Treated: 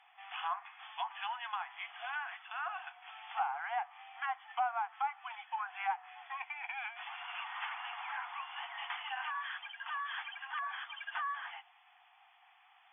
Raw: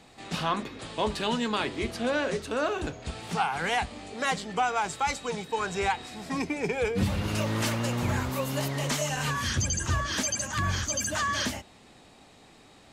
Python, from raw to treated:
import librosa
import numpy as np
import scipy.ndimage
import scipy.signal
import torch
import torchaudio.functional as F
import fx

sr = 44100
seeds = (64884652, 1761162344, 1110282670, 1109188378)

y = fx.brickwall_bandpass(x, sr, low_hz=690.0, high_hz=3500.0)
y = fx.env_lowpass_down(y, sr, base_hz=1300.0, full_db=-27.0)
y = y * 10.0 ** (-5.5 / 20.0)